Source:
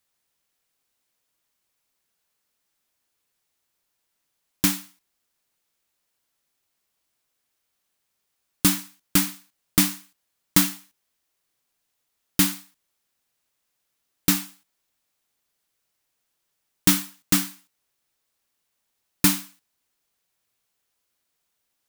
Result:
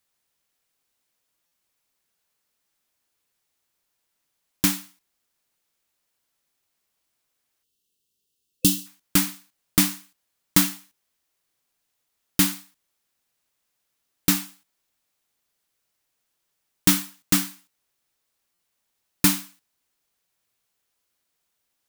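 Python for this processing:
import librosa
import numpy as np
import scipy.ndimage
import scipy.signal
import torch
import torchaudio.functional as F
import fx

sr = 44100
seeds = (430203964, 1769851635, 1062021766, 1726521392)

y = fx.spec_box(x, sr, start_s=7.63, length_s=1.24, low_hz=510.0, high_hz=2600.0, gain_db=-18)
y = fx.buffer_glitch(y, sr, at_s=(1.46, 18.54), block=256, repeats=8)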